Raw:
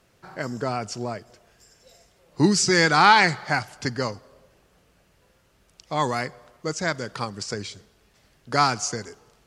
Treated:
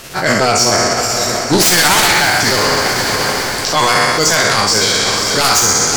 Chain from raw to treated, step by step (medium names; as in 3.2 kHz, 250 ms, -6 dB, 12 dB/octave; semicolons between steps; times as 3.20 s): spectral sustain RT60 1.53 s; treble shelf 2.3 kHz +10 dB; sine folder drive 16 dB, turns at 5 dBFS; reverse; compression 6:1, threshold -8 dBFS, peak gain reduction 10.5 dB; reverse; hard clipper -5.5 dBFS, distortion -22 dB; granular stretch 0.63×, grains 124 ms; on a send: echo that smears into a reverb 538 ms, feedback 55%, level -9 dB; on the sum: loudness maximiser +8.5 dB; trim -4 dB